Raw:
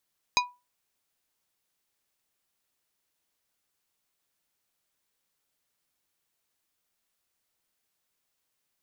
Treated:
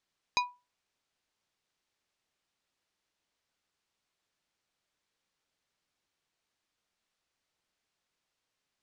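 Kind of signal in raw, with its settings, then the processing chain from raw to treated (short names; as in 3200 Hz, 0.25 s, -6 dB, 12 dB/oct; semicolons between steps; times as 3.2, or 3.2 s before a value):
glass hit plate, lowest mode 983 Hz, decay 0.26 s, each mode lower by 1 dB, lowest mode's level -19 dB
LPF 5800 Hz 12 dB/oct; limiter -14.5 dBFS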